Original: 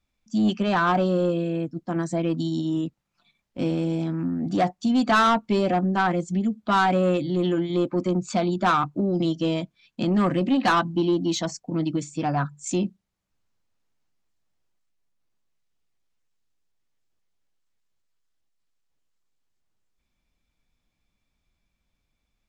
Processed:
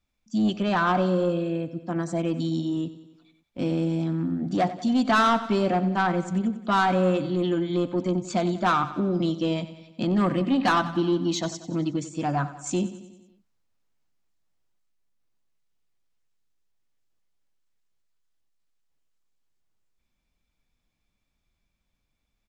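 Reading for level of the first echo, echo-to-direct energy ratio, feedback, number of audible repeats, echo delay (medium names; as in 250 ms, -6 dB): -14.5 dB, -12.5 dB, 58%, 5, 92 ms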